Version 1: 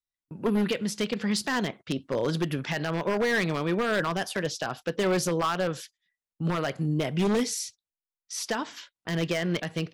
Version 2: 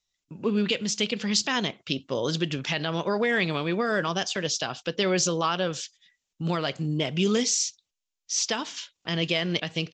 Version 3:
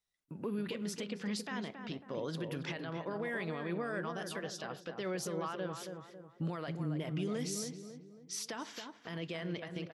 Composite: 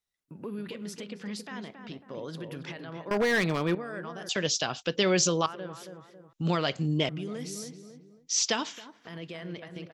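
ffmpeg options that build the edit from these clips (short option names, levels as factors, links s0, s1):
-filter_complex "[1:a]asplit=3[s0][s1][s2];[2:a]asplit=5[s3][s4][s5][s6][s7];[s3]atrim=end=3.112[s8];[0:a]atrim=start=3.108:end=3.752[s9];[s4]atrim=start=3.748:end=4.292[s10];[s0]atrim=start=4.288:end=5.462[s11];[s5]atrim=start=5.458:end=6.332[s12];[s1]atrim=start=6.328:end=7.092[s13];[s6]atrim=start=7.088:end=8.3[s14];[s2]atrim=start=8.14:end=8.82[s15];[s7]atrim=start=8.66[s16];[s8][s9]acrossfade=d=0.004:c1=hsin:c2=hsin[s17];[s17][s10]acrossfade=d=0.004:c1=hsin:c2=hsin[s18];[s18][s11]acrossfade=d=0.004:c1=hsin:c2=hsin[s19];[s19][s12]acrossfade=d=0.004:c1=hsin:c2=hsin[s20];[s20][s13]acrossfade=d=0.004:c1=hsin:c2=hsin[s21];[s21][s14]acrossfade=d=0.004:c1=hsin:c2=hsin[s22];[s22][s15]acrossfade=d=0.16:c1=tri:c2=tri[s23];[s23][s16]acrossfade=d=0.16:c1=tri:c2=tri"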